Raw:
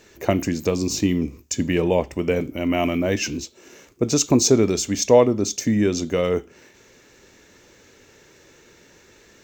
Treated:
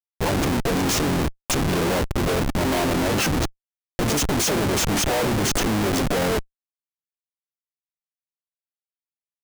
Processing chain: harmoniser -12 st -11 dB, +3 st -11 dB, +7 st -7 dB; Schmitt trigger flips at -27 dBFS

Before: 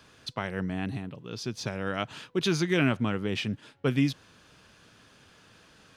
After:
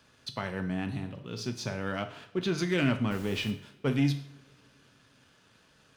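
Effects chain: 1.99–2.58 LPF 2100 Hz 6 dB/oct; sample leveller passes 1; 3.1–3.5 added noise pink -44 dBFS; resonator 140 Hz, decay 0.56 s, harmonics odd, mix 50%; 0.92–1.47 flutter echo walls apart 10.7 m, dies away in 0.35 s; two-slope reverb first 0.52 s, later 4.2 s, from -28 dB, DRR 7 dB

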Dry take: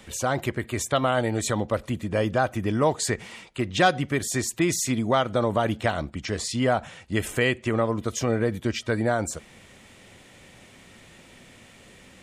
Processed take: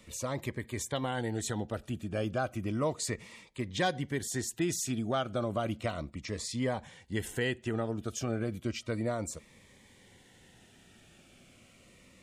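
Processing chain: cascading phaser falling 0.33 Hz; gain -7.5 dB

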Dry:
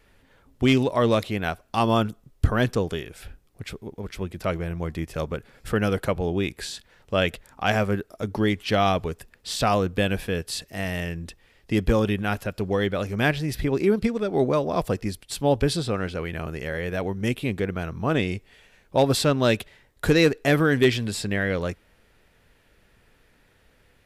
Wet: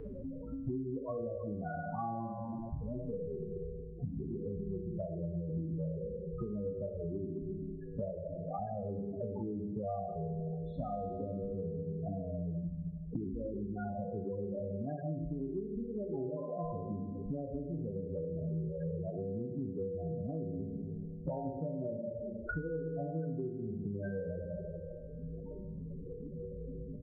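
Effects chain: spectral trails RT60 0.48 s; tempo 0.89×; LPF 1200 Hz 12 dB/oct; resonator 68 Hz, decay 0.69 s, harmonics odd, mix 40%; feedback echo 0.206 s, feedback 33%, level -22.5 dB; Schroeder reverb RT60 1 s, combs from 31 ms, DRR 5 dB; compressor 4:1, threshold -39 dBFS, peak gain reduction 19 dB; loudest bins only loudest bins 8; bell 460 Hz -3.5 dB 0.2 oct; resonator 54 Hz, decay 1.2 s, harmonics odd, mix 90%; three-band squash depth 100%; gain +18 dB

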